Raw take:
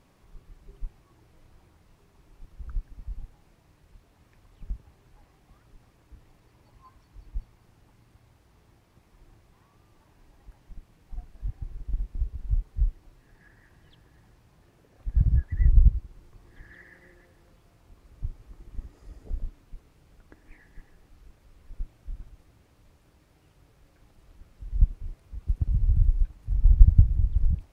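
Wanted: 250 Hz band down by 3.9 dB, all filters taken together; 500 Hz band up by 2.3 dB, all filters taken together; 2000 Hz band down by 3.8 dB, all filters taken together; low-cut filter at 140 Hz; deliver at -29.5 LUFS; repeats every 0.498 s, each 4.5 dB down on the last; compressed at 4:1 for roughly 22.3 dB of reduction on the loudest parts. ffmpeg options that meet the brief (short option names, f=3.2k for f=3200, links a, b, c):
-af "highpass=140,equalizer=f=250:t=o:g=-5,equalizer=f=500:t=o:g=5,equalizer=f=2k:t=o:g=-4.5,acompressor=threshold=-49dB:ratio=4,aecho=1:1:498|996|1494|1992|2490|2988|3486|3984|4482:0.596|0.357|0.214|0.129|0.0772|0.0463|0.0278|0.0167|0.01,volume=27.5dB"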